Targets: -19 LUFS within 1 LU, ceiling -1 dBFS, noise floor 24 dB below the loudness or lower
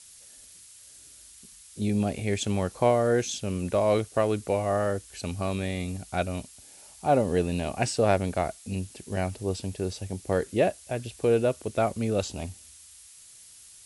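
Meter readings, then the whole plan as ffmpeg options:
noise floor -51 dBFS; noise floor target -52 dBFS; loudness -28.0 LUFS; peak level -9.0 dBFS; loudness target -19.0 LUFS
-> -af "afftdn=nr=6:nf=-51"
-af "volume=2.82,alimiter=limit=0.891:level=0:latency=1"

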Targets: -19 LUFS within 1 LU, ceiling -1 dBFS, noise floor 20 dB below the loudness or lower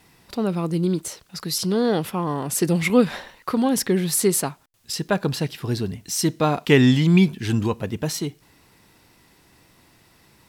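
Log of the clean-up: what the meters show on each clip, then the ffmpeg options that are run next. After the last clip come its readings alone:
loudness -22.0 LUFS; peak level -3.0 dBFS; loudness target -19.0 LUFS
-> -af "volume=1.41,alimiter=limit=0.891:level=0:latency=1"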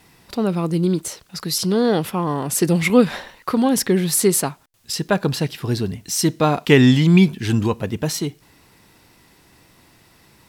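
loudness -19.0 LUFS; peak level -1.0 dBFS; noise floor -54 dBFS

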